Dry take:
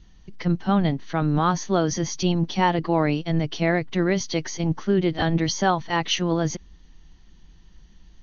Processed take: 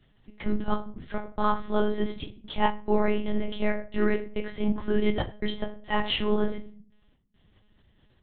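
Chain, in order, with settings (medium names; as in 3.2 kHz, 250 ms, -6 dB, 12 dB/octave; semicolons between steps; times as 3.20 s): high-pass 75 Hz 24 dB/octave; trance gate "xxxxxxx..xx..x" 141 bpm -60 dB; reverberation RT60 0.45 s, pre-delay 6 ms, DRR 1.5 dB; monotone LPC vocoder at 8 kHz 210 Hz; trim -4.5 dB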